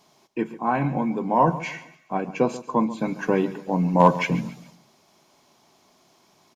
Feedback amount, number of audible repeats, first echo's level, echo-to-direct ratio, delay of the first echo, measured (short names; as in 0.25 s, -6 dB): 36%, 3, -16.0 dB, -15.5 dB, 0.138 s